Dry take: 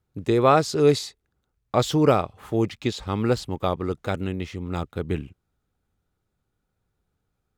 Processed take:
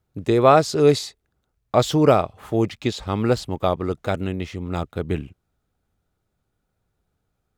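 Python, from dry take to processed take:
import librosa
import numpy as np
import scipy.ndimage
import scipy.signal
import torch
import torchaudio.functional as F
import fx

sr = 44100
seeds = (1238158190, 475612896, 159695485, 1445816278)

y = fx.peak_eq(x, sr, hz=650.0, db=4.5, octaves=0.32)
y = y * 10.0 ** (2.0 / 20.0)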